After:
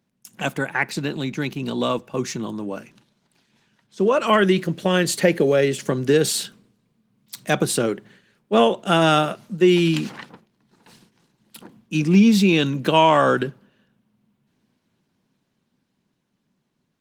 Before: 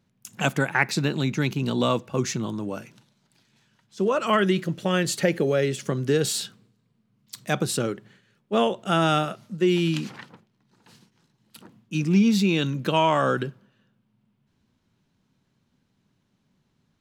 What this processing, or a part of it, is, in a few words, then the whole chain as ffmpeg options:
video call: -filter_complex "[0:a]bandreject=frequency=1300:width=18,asettb=1/sr,asplit=3[link_01][link_02][link_03];[link_01]atrim=end=2.624[link_04];[link_02]atrim=start=2.62:end=4.14,asetpts=PTS-STARTPTS,afade=type=in:duration=0.004:curve=qsin,afade=type=out:start_time=1.516:duration=0.004:curve=qsin,highshelf=frequency=7900:gain=-5.5[link_05];[link_03]atrim=start=4.136[link_06];[link_04][link_05]acrossfade=duration=0.004:curve1=hsin:curve2=qsin[link_07];[link_07][link_06]acrossfade=duration=0.004:curve1=qsin:curve2=hsin,highpass=160,dynaudnorm=framelen=510:gausssize=11:maxgain=8dB" -ar 48000 -c:a libopus -b:a 24k

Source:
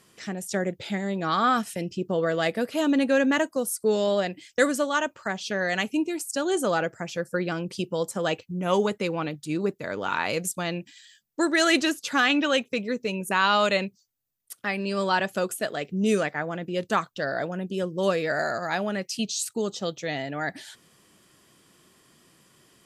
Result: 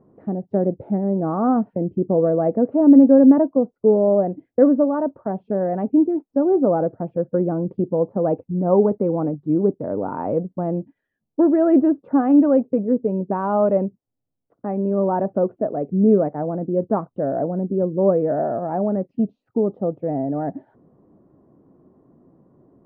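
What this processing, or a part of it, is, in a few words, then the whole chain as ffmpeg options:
under water: -af "lowpass=frequency=780:width=0.5412,lowpass=frequency=780:width=1.3066,equalizer=frequency=270:width_type=o:width=0.31:gain=6,volume=7.5dB"

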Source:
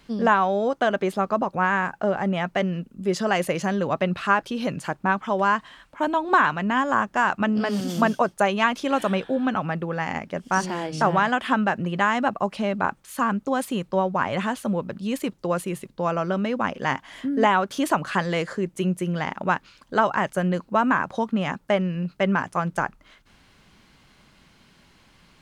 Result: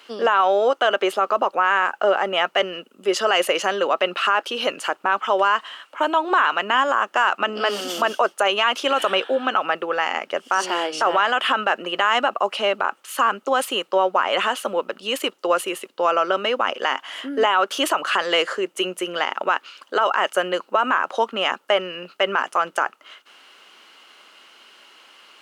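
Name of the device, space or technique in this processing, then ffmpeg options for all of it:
laptop speaker: -af "highpass=frequency=370:width=0.5412,highpass=frequency=370:width=1.3066,equalizer=frequency=1300:width_type=o:width=0.3:gain=7,equalizer=frequency=2900:width_type=o:width=0.23:gain=11,alimiter=limit=-14dB:level=0:latency=1:release=41,volume=6dB"

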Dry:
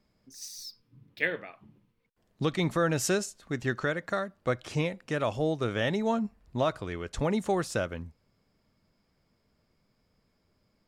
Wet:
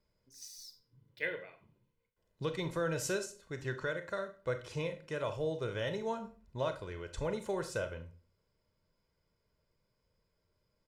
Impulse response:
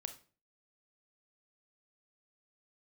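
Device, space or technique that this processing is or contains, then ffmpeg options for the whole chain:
microphone above a desk: -filter_complex "[0:a]aecho=1:1:2:0.56[link_01];[1:a]atrim=start_sample=2205[link_02];[link_01][link_02]afir=irnorm=-1:irlink=0,asettb=1/sr,asplit=3[link_03][link_04][link_05];[link_03]atrim=end=0.584[link_06];[link_04]atrim=start=0.58:end=1.21,asetpts=PTS-STARTPTS,afade=type=in:duration=0.004:curve=qsin,afade=type=out:start_time=0.626:duration=0.004:curve=qsin,bandreject=frequency=2500:width=11[link_07];[link_05]atrim=start=1.206[link_08];[link_06][link_07]acrossfade=duration=0.004:curve1=hsin:curve2=qsin[link_09];[link_09][link_08]acrossfade=duration=0.004:curve1=qsin:curve2=hsin,volume=-5.5dB"

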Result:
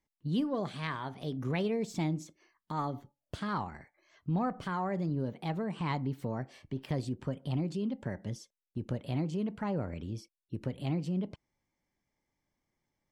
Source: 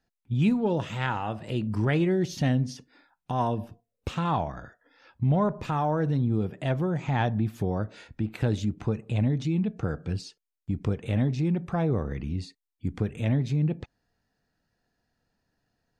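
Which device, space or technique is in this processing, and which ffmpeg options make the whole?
nightcore: -af "asetrate=53802,aresample=44100,volume=-7.5dB"

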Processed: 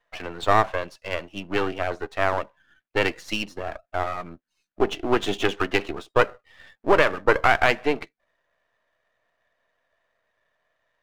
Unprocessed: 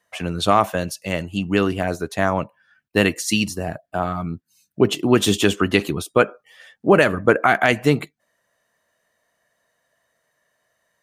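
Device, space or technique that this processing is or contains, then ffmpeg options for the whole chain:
crystal radio: -af "highpass=380,lowpass=2600,aeval=exprs='if(lt(val(0),0),0.251*val(0),val(0))':channel_layout=same,volume=1.5dB"

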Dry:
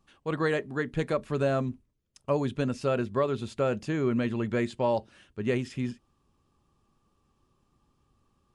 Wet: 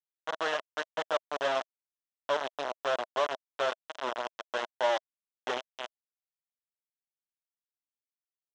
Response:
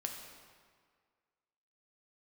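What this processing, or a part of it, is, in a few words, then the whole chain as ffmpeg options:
hand-held game console: -filter_complex "[0:a]asettb=1/sr,asplit=3[link_01][link_02][link_03];[link_01]atrim=end=3.684[link_04];[link_02]atrim=start=3.68:end=5.46,asetpts=PTS-STARTPTS,afade=type=in:duration=0.004:curve=qsin,afade=type=out:start_time=1.776:duration=0.004:curve=qsin,bass=frequency=250:gain=-4,treble=frequency=4000:gain=-3[link_05];[link_03]atrim=start=5.456[link_06];[link_04][link_05]acrossfade=duration=0.004:curve1=hsin:curve2=qsin[link_07];[link_07][link_06]acrossfade=duration=0.004:curve1=qsin:curve2=hsin,acrusher=bits=3:mix=0:aa=0.000001,highpass=490,equalizer=frequency=640:width_type=q:width=4:gain=9,equalizer=frequency=1000:width_type=q:width=4:gain=4,equalizer=frequency=1500:width_type=q:width=4:gain=3,equalizer=frequency=2300:width_type=q:width=4:gain=-6,equalizer=frequency=3200:width_type=q:width=4:gain=4,equalizer=frequency=4600:width_type=q:width=4:gain=-9,lowpass=frequency=5400:width=0.5412,lowpass=frequency=5400:width=1.3066,volume=-5.5dB"

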